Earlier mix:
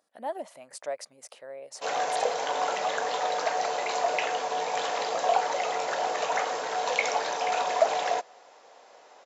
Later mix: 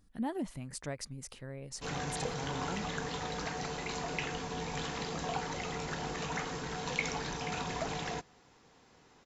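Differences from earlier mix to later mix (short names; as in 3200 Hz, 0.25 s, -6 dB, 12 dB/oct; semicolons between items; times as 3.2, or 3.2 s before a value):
background -6.0 dB; master: remove resonant high-pass 610 Hz, resonance Q 4.1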